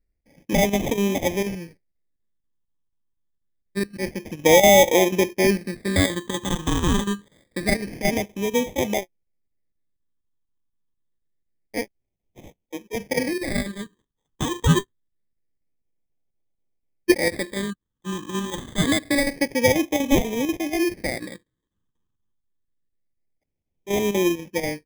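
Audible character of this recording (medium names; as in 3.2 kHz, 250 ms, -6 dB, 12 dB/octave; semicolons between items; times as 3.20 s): aliases and images of a low sample rate 1.4 kHz, jitter 0%; chopped level 4.1 Hz, depth 60%, duty 85%; phasing stages 8, 0.26 Hz, lowest notch 640–1400 Hz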